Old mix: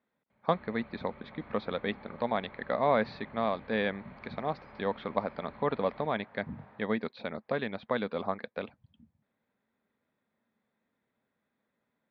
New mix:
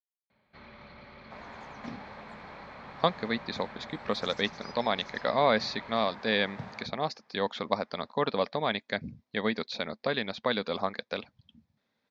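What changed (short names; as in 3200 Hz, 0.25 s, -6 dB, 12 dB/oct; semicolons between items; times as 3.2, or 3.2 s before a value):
speech: entry +2.55 s; second sound +8.0 dB; master: remove air absorption 470 m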